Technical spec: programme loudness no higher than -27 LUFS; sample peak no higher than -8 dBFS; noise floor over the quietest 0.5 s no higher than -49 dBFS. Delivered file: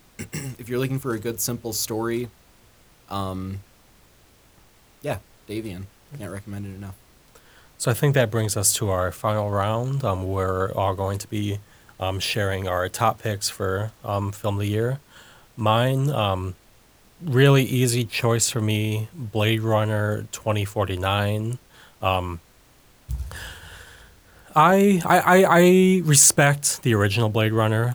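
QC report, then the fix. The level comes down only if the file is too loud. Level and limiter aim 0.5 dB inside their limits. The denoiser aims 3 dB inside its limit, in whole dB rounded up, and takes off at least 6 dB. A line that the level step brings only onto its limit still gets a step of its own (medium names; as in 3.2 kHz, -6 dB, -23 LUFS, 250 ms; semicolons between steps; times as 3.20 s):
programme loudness -21.5 LUFS: fail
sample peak -3.5 dBFS: fail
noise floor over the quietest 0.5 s -55 dBFS: pass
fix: trim -6 dB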